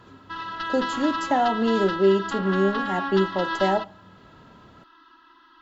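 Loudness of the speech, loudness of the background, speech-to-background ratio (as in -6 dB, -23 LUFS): -24.0 LUFS, -29.5 LUFS, 5.5 dB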